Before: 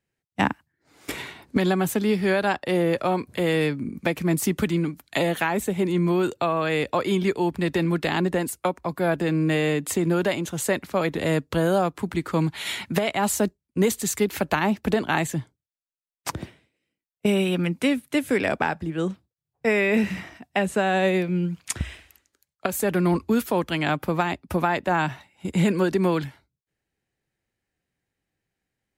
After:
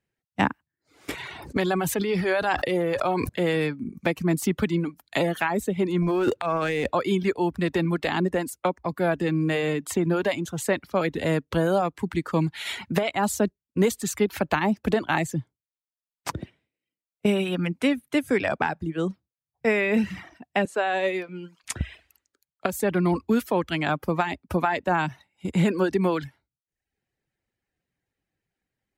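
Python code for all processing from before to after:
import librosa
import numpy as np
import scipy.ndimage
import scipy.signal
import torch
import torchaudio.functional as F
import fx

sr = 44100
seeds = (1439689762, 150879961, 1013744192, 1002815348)

y = fx.chain(x, sr, fx.peak_eq(hz=220.0, db=-7.0, octaves=0.76),
    fx.sustainer(db_per_s=21.0), at=(1.15, 3.29))
y = fx.chain(y, sr, fx.median_filter(points=9),
    fx.transient(attack_db=-10, sustain_db=12), at=(6.02, 6.93))
y = fx.chain(y, sr, fx.highpass(hz=400.0, slope=12),
    fx.high_shelf(hz=11000.0, db=-8.0), at=(20.65, 21.64))
y = fx.dereverb_blind(y, sr, rt60_s=0.66)
y = fx.high_shelf(y, sr, hz=5700.0, db=-6.0)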